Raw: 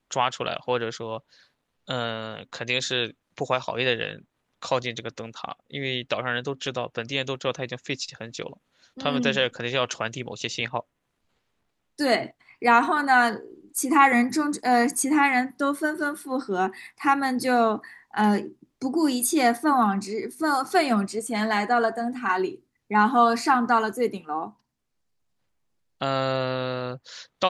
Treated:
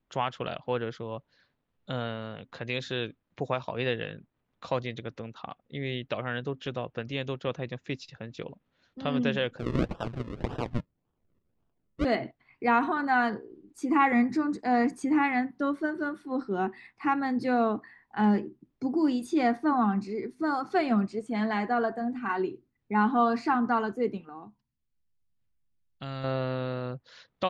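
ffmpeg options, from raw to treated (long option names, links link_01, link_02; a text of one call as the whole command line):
ffmpeg -i in.wav -filter_complex "[0:a]asettb=1/sr,asplit=3[link_01][link_02][link_03];[link_01]atrim=end=9.584[link_04];[link_02]atrim=start=9.58:end=12.05,asetpts=PTS-STARTPTS,afade=type=in:duration=0.004:curve=qsin,afade=type=out:start_time=2.466:duration=0.004:curve=qsin,acrusher=samples=39:mix=1:aa=0.000001:lfo=1:lforange=39:lforate=1.8[link_05];[link_03]atrim=start=12.046[link_06];[link_04][link_05]acrossfade=duration=0.004:curve1=hsin:curve2=qsin[link_07];[link_07][link_06]acrossfade=duration=0.004:curve1=qsin:curve2=hsin,asettb=1/sr,asplit=3[link_08][link_09][link_10];[link_08]atrim=end=24.294[link_11];[link_09]atrim=start=24.29:end=26.24,asetpts=PTS-STARTPTS,afade=type=in:duration=0.004:curve=qsin,afade=type=out:start_time=1.946:duration=0.004:curve=qsin,equalizer=frequency=600:width=0.38:gain=-11.5[link_12];[link_10]atrim=start=26.236[link_13];[link_11][link_12]acrossfade=duration=0.004:curve1=hsin:curve2=qsin[link_14];[link_14][link_13]acrossfade=duration=0.004:curve1=qsin:curve2=hsin,lowpass=3600,lowshelf=frequency=360:gain=8.5,volume=-7.5dB" out.wav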